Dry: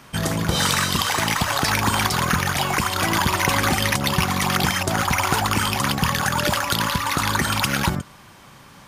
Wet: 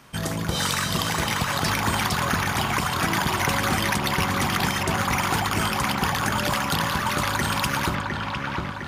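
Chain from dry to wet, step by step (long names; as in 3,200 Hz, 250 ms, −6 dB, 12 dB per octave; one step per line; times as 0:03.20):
delay with a low-pass on its return 707 ms, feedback 57%, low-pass 2,900 Hz, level −3 dB
level −4.5 dB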